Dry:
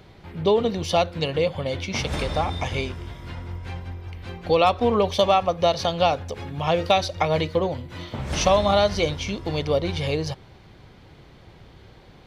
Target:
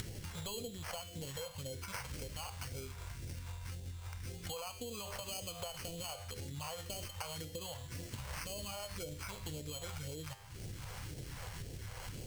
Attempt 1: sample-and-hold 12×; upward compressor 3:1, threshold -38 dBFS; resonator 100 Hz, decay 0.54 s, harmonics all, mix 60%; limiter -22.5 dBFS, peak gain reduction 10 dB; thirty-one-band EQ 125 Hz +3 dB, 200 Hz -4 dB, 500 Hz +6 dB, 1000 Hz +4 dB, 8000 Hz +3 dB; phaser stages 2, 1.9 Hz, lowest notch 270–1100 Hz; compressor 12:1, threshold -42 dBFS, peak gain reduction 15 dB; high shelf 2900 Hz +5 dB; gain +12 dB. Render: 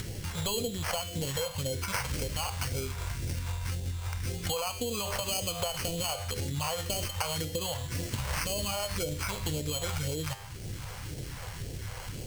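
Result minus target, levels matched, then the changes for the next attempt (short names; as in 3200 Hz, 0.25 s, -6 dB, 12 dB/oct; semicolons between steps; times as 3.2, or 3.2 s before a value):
compressor: peak gain reduction -11 dB
change: compressor 12:1, threshold -54 dBFS, peak gain reduction 26 dB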